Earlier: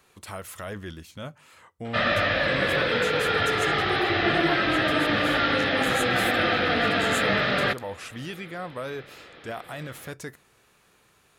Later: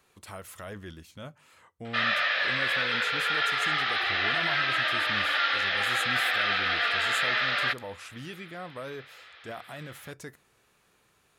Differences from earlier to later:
speech −5.0 dB
background: add high-pass filter 1,200 Hz 12 dB per octave

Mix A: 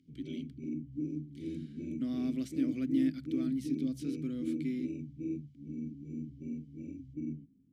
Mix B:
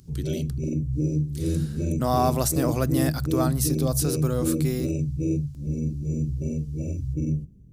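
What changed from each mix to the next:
master: remove formant filter i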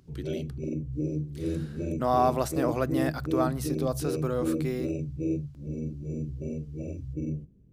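master: add bass and treble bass −9 dB, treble −14 dB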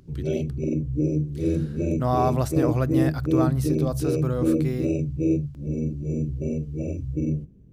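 speech: remove high-pass filter 250 Hz 12 dB per octave
background +7.0 dB

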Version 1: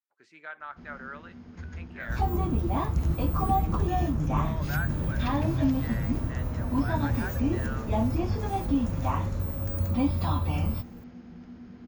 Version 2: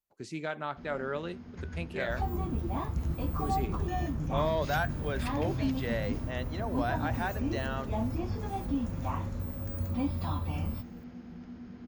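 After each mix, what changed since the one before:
speech: remove resonant band-pass 1,500 Hz, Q 2.1
second sound −6.0 dB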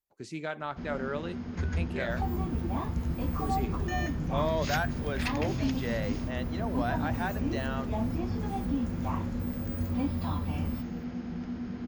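first sound +9.0 dB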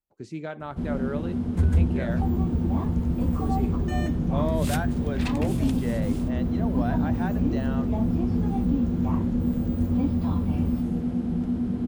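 first sound: remove Chebyshev low-pass with heavy ripple 6,800 Hz, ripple 6 dB
master: add tilt shelving filter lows +5 dB, about 770 Hz

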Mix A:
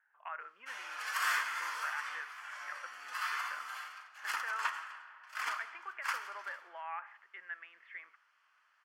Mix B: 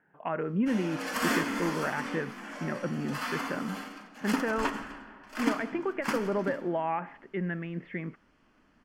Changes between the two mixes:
background −3.5 dB
master: remove four-pole ladder high-pass 1,000 Hz, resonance 35%

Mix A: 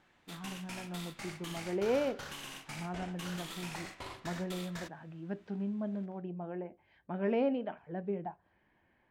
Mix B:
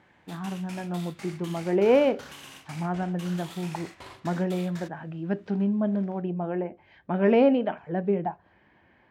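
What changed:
speech +11.0 dB
master: add high-pass filter 55 Hz

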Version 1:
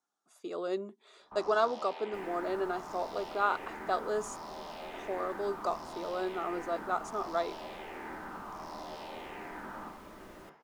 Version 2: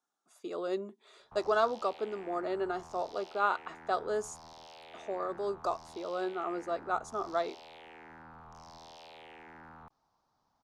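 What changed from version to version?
second sound: muted
reverb: off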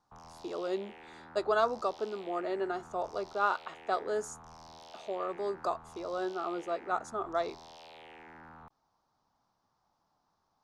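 background: entry −1.20 s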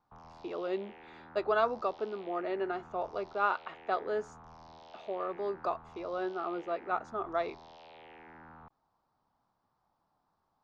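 speech: add parametric band 2,400 Hz +7.5 dB 0.65 octaves
master: add high-frequency loss of the air 200 metres

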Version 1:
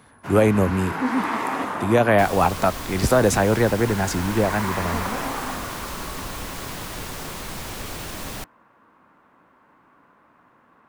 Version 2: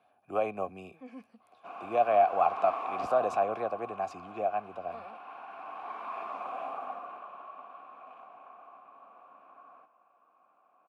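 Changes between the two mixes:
first sound: entry +1.40 s
second sound: muted
master: add formant filter a

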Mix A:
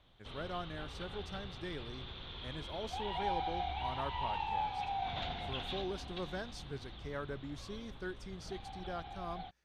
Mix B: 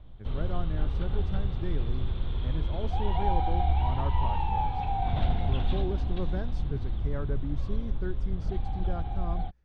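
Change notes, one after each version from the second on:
background +4.0 dB
master: add spectral tilt −4 dB per octave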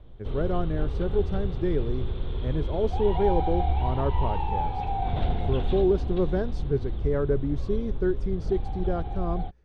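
speech +5.5 dB
master: add parametric band 420 Hz +9 dB 0.75 octaves

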